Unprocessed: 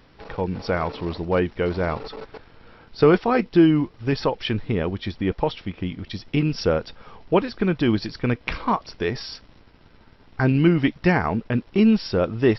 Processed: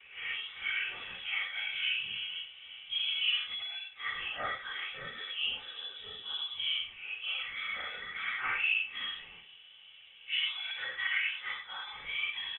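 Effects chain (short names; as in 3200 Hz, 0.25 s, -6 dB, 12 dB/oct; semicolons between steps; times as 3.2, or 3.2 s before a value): phase scrambler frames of 0.2 s; gate with hold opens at -46 dBFS; HPF 170 Hz 6 dB/oct; comb 2.8 ms, depth 49%; limiter -14 dBFS, peak gain reduction 11 dB; compressor 2.5:1, threshold -35 dBFS, peak gain reduction 12 dB; LFO band-pass sine 0.28 Hz 740–1800 Hz; on a send: echo 0.107 s -18.5 dB; on the sum: inverted band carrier 3700 Hz; gain +9 dB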